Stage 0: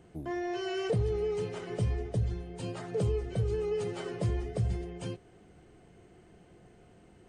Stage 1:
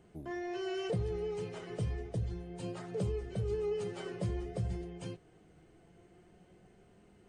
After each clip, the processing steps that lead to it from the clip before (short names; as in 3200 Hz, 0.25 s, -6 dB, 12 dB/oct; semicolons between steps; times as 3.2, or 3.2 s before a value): flange 0.28 Hz, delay 4.8 ms, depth 1.6 ms, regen +69%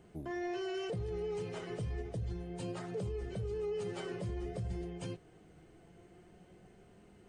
limiter -33.5 dBFS, peak gain reduction 8.5 dB; gain +2 dB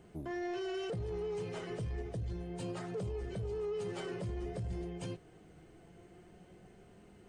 soft clip -33 dBFS, distortion -20 dB; gain +1.5 dB